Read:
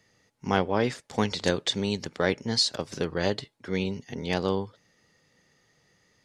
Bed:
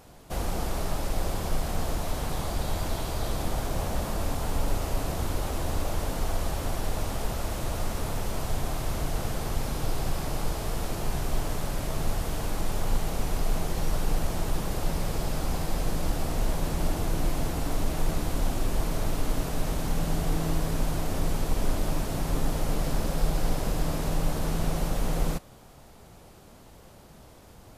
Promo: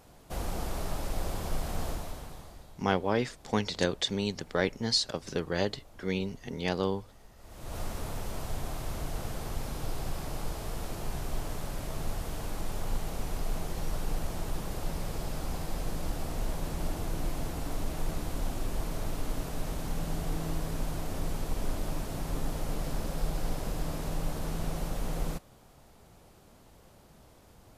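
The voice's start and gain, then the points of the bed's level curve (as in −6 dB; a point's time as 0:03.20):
2.35 s, −3.0 dB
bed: 0:01.88 −4.5 dB
0:02.81 −25.5 dB
0:07.35 −25.5 dB
0:07.77 −6 dB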